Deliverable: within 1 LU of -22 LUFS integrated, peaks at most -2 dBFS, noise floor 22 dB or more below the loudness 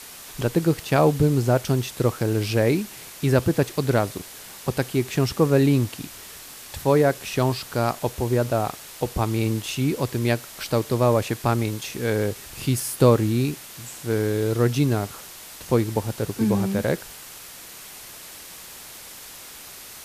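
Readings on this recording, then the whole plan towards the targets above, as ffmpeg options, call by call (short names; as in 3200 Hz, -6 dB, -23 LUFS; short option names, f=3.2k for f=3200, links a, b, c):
noise floor -42 dBFS; noise floor target -45 dBFS; loudness -23.0 LUFS; peak -5.5 dBFS; loudness target -22.0 LUFS
-> -af "afftdn=nr=6:nf=-42"
-af "volume=1dB"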